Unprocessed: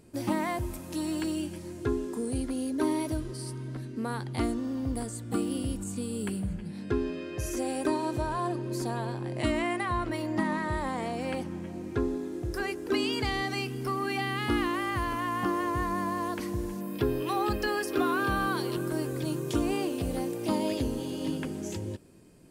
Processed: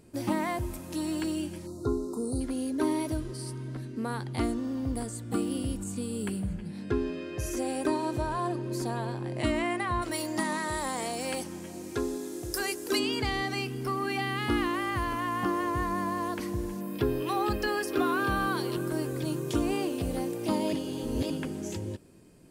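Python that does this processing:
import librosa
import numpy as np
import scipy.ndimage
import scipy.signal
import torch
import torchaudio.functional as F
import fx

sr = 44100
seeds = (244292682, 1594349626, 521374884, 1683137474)

y = fx.spec_box(x, sr, start_s=1.67, length_s=0.74, low_hz=1400.0, high_hz=3700.0, gain_db=-28)
y = fx.bass_treble(y, sr, bass_db=-7, treble_db=15, at=(10.01, 12.98), fade=0.02)
y = fx.edit(y, sr, fx.reverse_span(start_s=20.73, length_s=0.57), tone=tone)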